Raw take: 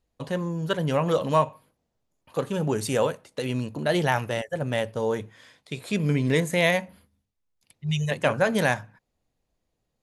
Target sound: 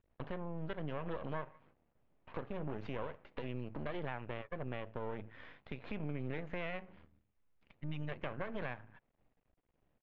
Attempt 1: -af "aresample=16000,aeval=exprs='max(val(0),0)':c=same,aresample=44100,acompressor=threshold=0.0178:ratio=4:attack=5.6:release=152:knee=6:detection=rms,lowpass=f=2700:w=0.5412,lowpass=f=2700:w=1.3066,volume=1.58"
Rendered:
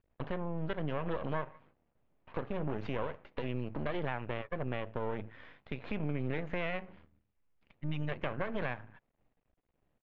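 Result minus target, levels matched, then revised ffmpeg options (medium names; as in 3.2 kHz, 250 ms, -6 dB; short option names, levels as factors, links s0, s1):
compression: peak gain reduction -5.5 dB
-af "aresample=16000,aeval=exprs='max(val(0),0)':c=same,aresample=44100,acompressor=threshold=0.00794:ratio=4:attack=5.6:release=152:knee=6:detection=rms,lowpass=f=2700:w=0.5412,lowpass=f=2700:w=1.3066,volume=1.58"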